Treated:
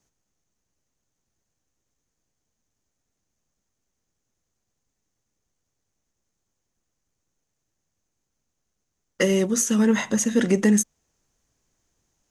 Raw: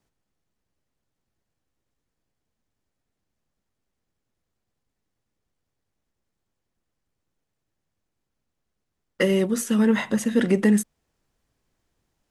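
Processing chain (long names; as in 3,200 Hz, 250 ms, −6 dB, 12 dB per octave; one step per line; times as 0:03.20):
parametric band 6,400 Hz +14 dB 0.43 octaves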